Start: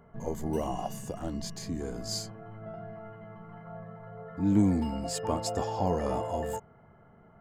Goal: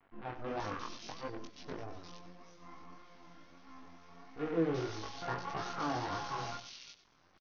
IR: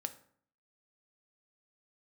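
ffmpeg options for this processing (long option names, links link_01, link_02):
-filter_complex "[0:a]bandreject=frequency=50:width_type=h:width=6,bandreject=frequency=100:width_type=h:width=6,bandreject=frequency=150:width_type=h:width=6,bandreject=frequency=200:width_type=h:width=6,bandreject=frequency=250:width_type=h:width=6,bandreject=frequency=300:width_type=h:width=6,bandreject=frequency=350:width_type=h:width=6,bandreject=frequency=400:width_type=h:width=6,bandreject=frequency=450:width_type=h:width=6,aresample=8000,acrusher=bits=6:dc=4:mix=0:aa=0.000001,aresample=44100,asetrate=70004,aresample=44100,atempo=0.629961,flanger=delay=19:depth=5.9:speed=1.6,acrossover=split=2700[link_01][link_02];[link_02]adelay=350[link_03];[link_01][link_03]amix=inputs=2:normalize=0,asplit=2[link_04][link_05];[1:a]atrim=start_sample=2205,adelay=96[link_06];[link_05][link_06]afir=irnorm=-1:irlink=0,volume=-12dB[link_07];[link_04][link_07]amix=inputs=2:normalize=0,volume=-4.5dB"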